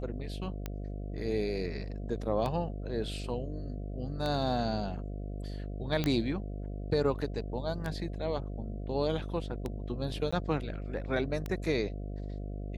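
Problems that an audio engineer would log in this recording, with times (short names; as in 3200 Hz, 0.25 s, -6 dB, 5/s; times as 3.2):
buzz 50 Hz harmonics 14 -38 dBFS
tick 33 1/3 rpm -21 dBFS
6.04 pop -16 dBFS
10.31–10.32 gap 15 ms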